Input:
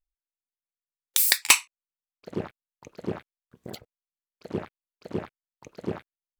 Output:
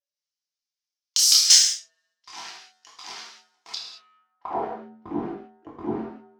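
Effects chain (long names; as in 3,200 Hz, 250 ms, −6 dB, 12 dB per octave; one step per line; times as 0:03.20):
noise gate −48 dBFS, range −33 dB
low-pass that shuts in the quiet parts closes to 2,300 Hz, open at −19.5 dBFS
parametric band 5,600 Hz +13 dB 0.72 octaves
hum removal 174.9 Hz, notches 7
ring modulation 570 Hz
chorus effect 0.37 Hz, delay 20 ms, depth 7.5 ms
power curve on the samples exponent 0.7
band-pass filter sweep 5,500 Hz → 310 Hz, 0:03.72–0:04.83
in parallel at −4 dB: hard clipping −21 dBFS, distortion −6 dB
on the sum: reverb whose tail is shaped and stops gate 220 ms falling, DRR −2 dB
one half of a high-frequency compander encoder only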